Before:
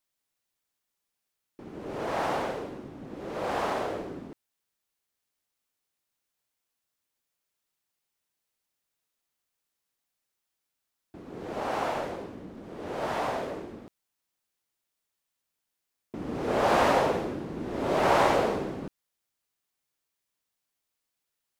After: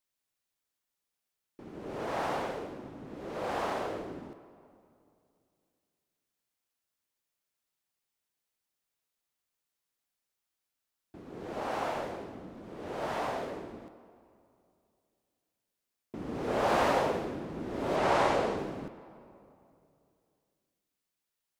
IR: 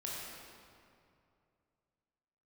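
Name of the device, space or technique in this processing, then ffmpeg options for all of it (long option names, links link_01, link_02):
saturated reverb return: -filter_complex "[0:a]asplit=2[link_01][link_02];[1:a]atrim=start_sample=2205[link_03];[link_02][link_03]afir=irnorm=-1:irlink=0,asoftclip=type=tanh:threshold=-28.5dB,volume=-11dB[link_04];[link_01][link_04]amix=inputs=2:normalize=0,asettb=1/sr,asplit=3[link_05][link_06][link_07];[link_05]atrim=end=17.964[link_08];[link_06]atrim=start=17.96:end=18.58,asetpts=PTS-STARTPTS,afade=type=in:duration=0.004:curve=qsin,afade=type=out:start_time=0.616:duration=0.004:curve=qsin,lowpass=9800[link_09];[link_07]atrim=start=18.576[link_10];[link_08][link_09]acrossfade=duration=0.004:curve1=hsin:curve2=qsin[link_11];[link_11][link_10]acrossfade=duration=0.004:curve1=qsin:curve2=hsin,volume=-4.5dB"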